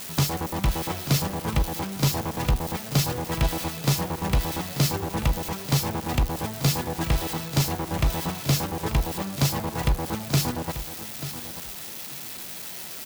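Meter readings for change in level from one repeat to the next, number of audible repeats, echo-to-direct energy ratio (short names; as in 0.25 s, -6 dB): -14.5 dB, 2, -12.5 dB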